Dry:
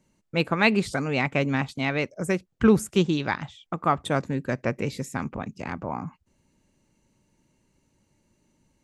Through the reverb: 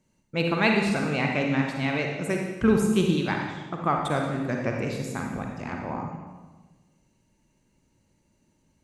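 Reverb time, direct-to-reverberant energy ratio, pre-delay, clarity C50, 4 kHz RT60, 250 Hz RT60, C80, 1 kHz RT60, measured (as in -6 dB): 1.3 s, 1.0 dB, 39 ms, 2.0 dB, 1.1 s, 1.6 s, 4.5 dB, 1.2 s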